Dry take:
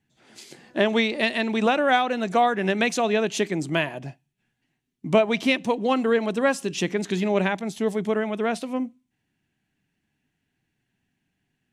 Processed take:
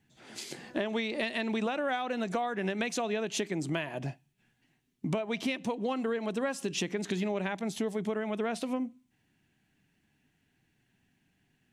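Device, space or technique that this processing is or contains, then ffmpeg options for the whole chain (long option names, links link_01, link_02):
serial compression, peaks first: -af "acompressor=threshold=-28dB:ratio=5,acompressor=threshold=-40dB:ratio=1.5,volume=3.5dB"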